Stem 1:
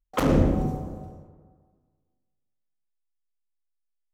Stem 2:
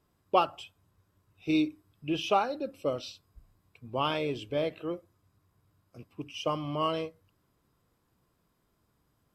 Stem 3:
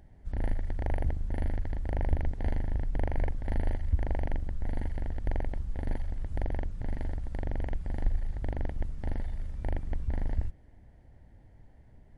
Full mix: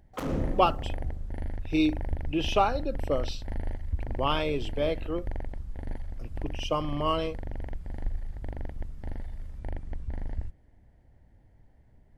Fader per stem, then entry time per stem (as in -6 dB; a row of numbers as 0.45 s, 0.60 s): -10.5 dB, +2.0 dB, -3.5 dB; 0.00 s, 0.25 s, 0.00 s